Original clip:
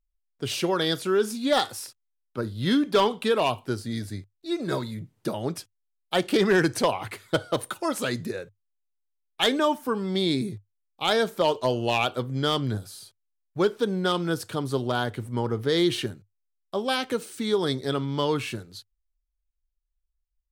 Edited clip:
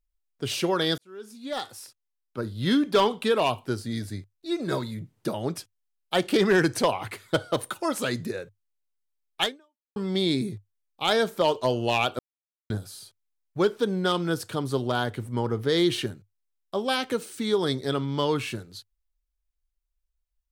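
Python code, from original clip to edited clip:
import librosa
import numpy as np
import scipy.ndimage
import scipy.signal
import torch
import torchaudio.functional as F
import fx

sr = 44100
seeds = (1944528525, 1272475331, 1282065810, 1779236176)

y = fx.edit(x, sr, fx.fade_in_span(start_s=0.98, length_s=1.71),
    fx.fade_out_span(start_s=9.43, length_s=0.53, curve='exp'),
    fx.silence(start_s=12.19, length_s=0.51), tone=tone)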